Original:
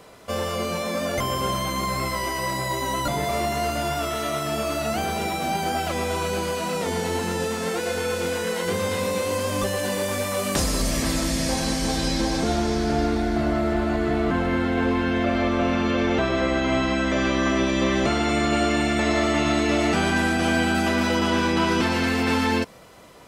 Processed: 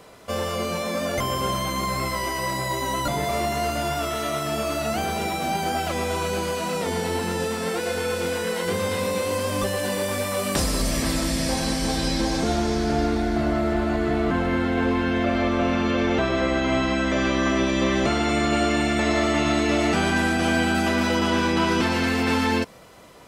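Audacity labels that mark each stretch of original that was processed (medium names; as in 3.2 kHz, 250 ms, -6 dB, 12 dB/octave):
6.800000	12.260000	band-stop 6.6 kHz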